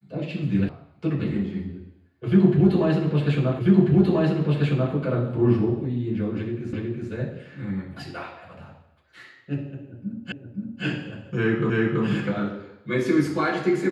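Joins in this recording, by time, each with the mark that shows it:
0:00.69: cut off before it has died away
0:03.59: the same again, the last 1.34 s
0:06.73: the same again, the last 0.37 s
0:10.32: the same again, the last 0.52 s
0:11.70: the same again, the last 0.33 s

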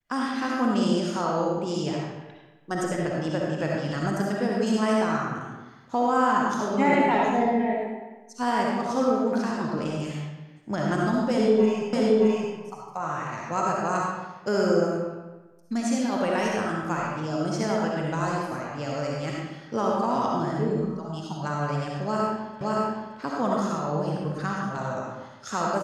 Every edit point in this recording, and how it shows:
0:11.93: the same again, the last 0.62 s
0:22.61: the same again, the last 0.57 s

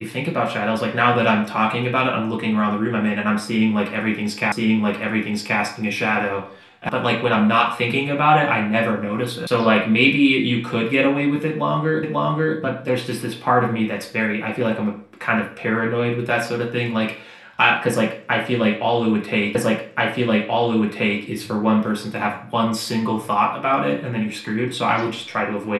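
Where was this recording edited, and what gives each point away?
0:04.52: the same again, the last 1.08 s
0:06.89: cut off before it has died away
0:09.47: cut off before it has died away
0:12.03: the same again, the last 0.54 s
0:19.55: the same again, the last 1.68 s

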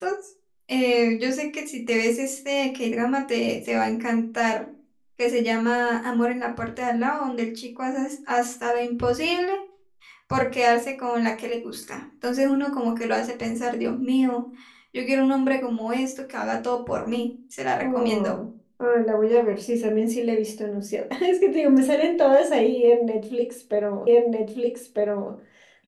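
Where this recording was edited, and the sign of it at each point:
0:24.07: the same again, the last 1.25 s

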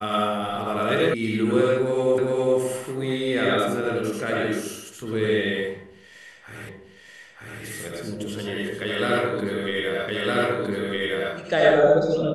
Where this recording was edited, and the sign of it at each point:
0:01.14: cut off before it has died away
0:02.18: the same again, the last 0.41 s
0:06.69: the same again, the last 0.93 s
0:10.08: the same again, the last 1.26 s

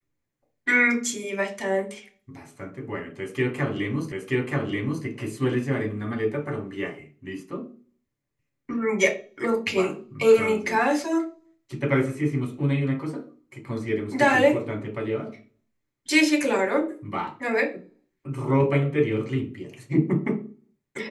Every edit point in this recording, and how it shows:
0:04.12: the same again, the last 0.93 s

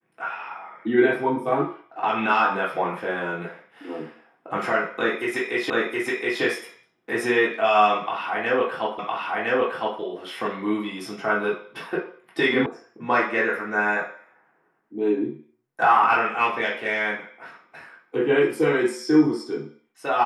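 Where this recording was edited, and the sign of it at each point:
0:05.70: the same again, the last 0.72 s
0:08.99: the same again, the last 1.01 s
0:12.66: cut off before it has died away

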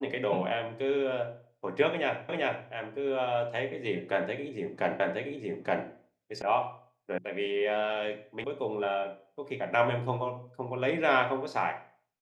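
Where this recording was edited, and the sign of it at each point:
0:02.29: the same again, the last 0.39 s
0:05.00: the same again, the last 0.87 s
0:06.42: cut off before it has died away
0:07.18: cut off before it has died away
0:08.44: cut off before it has died away

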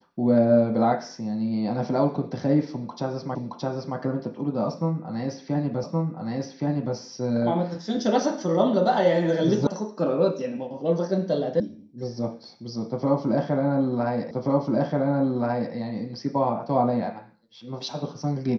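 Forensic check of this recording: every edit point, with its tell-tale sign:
0:03.35: the same again, the last 0.62 s
0:05.84: the same again, the last 1.12 s
0:09.67: cut off before it has died away
0:11.60: cut off before it has died away
0:14.31: the same again, the last 1.43 s

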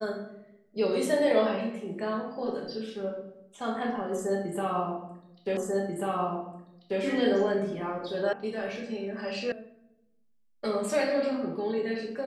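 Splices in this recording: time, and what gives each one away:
0:05.57: the same again, the last 1.44 s
0:08.33: cut off before it has died away
0:09.52: cut off before it has died away

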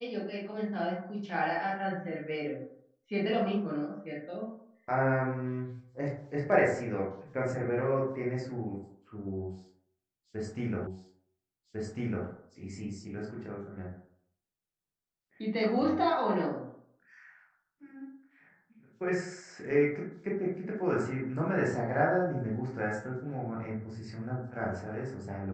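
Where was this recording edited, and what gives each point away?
0:10.87: the same again, the last 1.4 s

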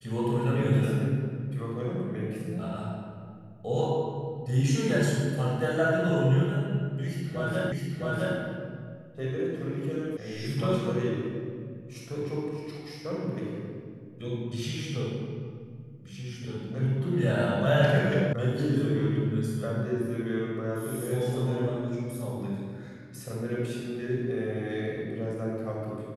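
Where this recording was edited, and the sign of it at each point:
0:07.72: the same again, the last 0.66 s
0:10.17: cut off before it has died away
0:18.33: cut off before it has died away

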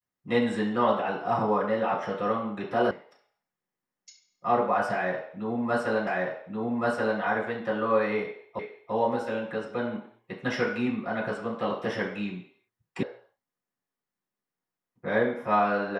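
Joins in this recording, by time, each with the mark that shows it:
0:02.91: cut off before it has died away
0:06.07: the same again, the last 1.13 s
0:08.59: the same again, the last 0.34 s
0:13.03: cut off before it has died away

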